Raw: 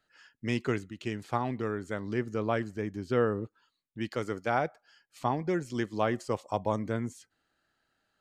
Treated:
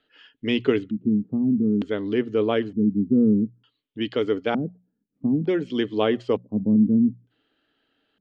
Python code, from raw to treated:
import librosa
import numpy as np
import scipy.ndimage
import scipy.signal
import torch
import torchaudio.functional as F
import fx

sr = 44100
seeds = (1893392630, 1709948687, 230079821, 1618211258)

y = fx.hum_notches(x, sr, base_hz=60, count=3)
y = fx.small_body(y, sr, hz=(290.0, 420.0), ring_ms=40, db=14)
y = fx.filter_lfo_lowpass(y, sr, shape='square', hz=0.55, low_hz=210.0, high_hz=3200.0, q=5.0)